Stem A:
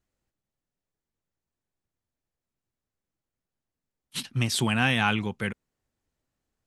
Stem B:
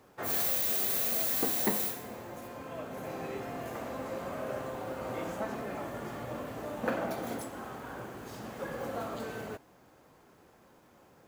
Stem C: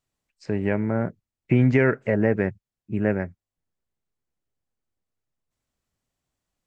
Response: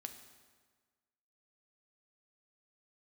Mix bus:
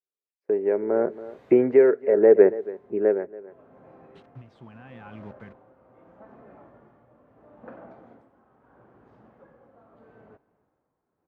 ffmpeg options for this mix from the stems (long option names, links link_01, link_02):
-filter_complex "[0:a]acrusher=bits=5:mix=0:aa=0.000001,alimiter=limit=-19.5dB:level=0:latency=1:release=125,volume=-9dB[link_01];[1:a]adelay=800,volume=-11dB,asplit=2[link_02][link_03];[link_03]volume=-22.5dB[link_04];[2:a]agate=range=-23dB:threshold=-43dB:ratio=16:detection=peak,highpass=frequency=410:width_type=q:width=4.2,volume=2dB,asplit=4[link_05][link_06][link_07][link_08];[link_06]volume=-18dB[link_09];[link_07]volume=-19dB[link_10];[link_08]apad=whole_len=532636[link_11];[link_02][link_11]sidechaincompress=threshold=-25dB:ratio=8:attack=16:release=411[link_12];[3:a]atrim=start_sample=2205[link_13];[link_09][link_13]afir=irnorm=-1:irlink=0[link_14];[link_04][link_10]amix=inputs=2:normalize=0,aecho=0:1:279:1[link_15];[link_01][link_12][link_05][link_14][link_15]amix=inputs=5:normalize=0,lowpass=1400,tremolo=f=0.77:d=0.64"